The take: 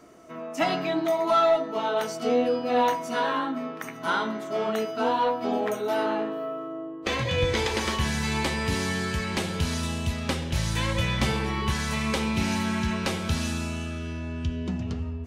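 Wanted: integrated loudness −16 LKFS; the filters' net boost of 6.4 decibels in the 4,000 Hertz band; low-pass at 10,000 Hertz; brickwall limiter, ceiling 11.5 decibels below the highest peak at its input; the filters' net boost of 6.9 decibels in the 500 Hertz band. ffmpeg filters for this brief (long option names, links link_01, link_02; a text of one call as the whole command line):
ffmpeg -i in.wav -af "lowpass=10000,equalizer=frequency=500:width_type=o:gain=8.5,equalizer=frequency=4000:width_type=o:gain=8,volume=11.5dB,alimiter=limit=-7.5dB:level=0:latency=1" out.wav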